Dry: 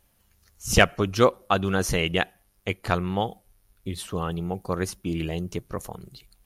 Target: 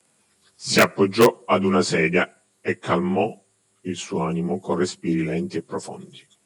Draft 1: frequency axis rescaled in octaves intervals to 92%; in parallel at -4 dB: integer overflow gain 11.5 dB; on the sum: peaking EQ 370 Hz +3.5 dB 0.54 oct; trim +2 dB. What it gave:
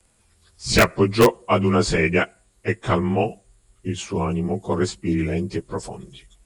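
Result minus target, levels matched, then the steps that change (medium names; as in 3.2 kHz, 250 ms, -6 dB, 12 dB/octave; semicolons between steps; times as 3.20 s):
125 Hz band +3.5 dB
add after the parallel path: high-pass 140 Hz 24 dB/octave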